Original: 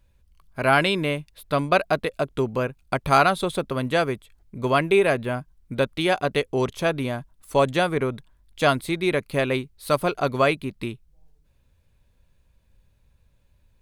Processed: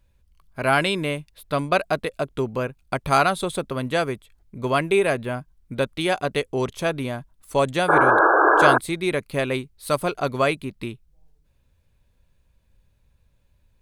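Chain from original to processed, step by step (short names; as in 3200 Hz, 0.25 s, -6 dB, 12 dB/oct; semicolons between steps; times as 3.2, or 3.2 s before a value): painted sound noise, 7.88–8.78, 300–1700 Hz -15 dBFS; dynamic EQ 8400 Hz, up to +6 dB, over -48 dBFS, Q 1.5; gain -1 dB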